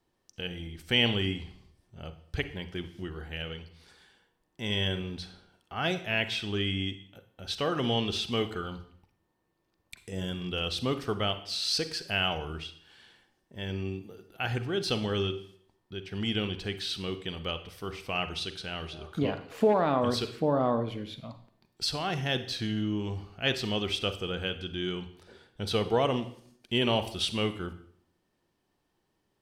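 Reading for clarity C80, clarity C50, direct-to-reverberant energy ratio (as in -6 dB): 15.5 dB, 12.0 dB, 10.0 dB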